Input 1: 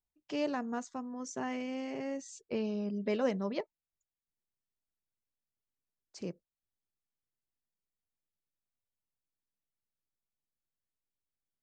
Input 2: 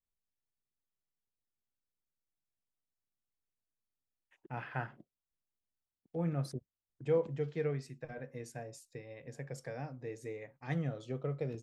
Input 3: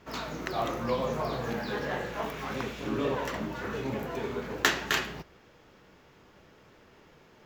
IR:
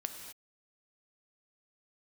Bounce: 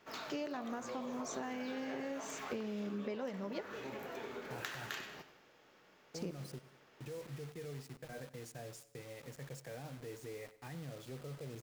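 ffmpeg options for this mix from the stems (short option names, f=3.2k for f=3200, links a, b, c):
-filter_complex "[0:a]volume=-1.5dB,asplit=2[a][b];[b]volume=-7.5dB[c];[1:a]acompressor=threshold=-40dB:ratio=2.5,alimiter=level_in=13.5dB:limit=-24dB:level=0:latency=1:release=19,volume=-13.5dB,acrusher=bits=8:mix=0:aa=0.000001,volume=-2dB,asplit=3[d][e][f];[e]volume=-15.5dB[g];[f]volume=-17dB[h];[2:a]highpass=f=460:p=1,bandreject=f=1k:w=18,acompressor=threshold=-37dB:ratio=2.5,volume=-7dB,asplit=3[i][j][k];[j]volume=-11.5dB[l];[k]volume=-11dB[m];[3:a]atrim=start_sample=2205[n];[c][g][l]amix=inputs=3:normalize=0[o];[o][n]afir=irnorm=-1:irlink=0[p];[h][m]amix=inputs=2:normalize=0,aecho=0:1:95|190|285|380|475|570:1|0.44|0.194|0.0852|0.0375|0.0165[q];[a][d][i][p][q]amix=inputs=5:normalize=0,acompressor=threshold=-37dB:ratio=10"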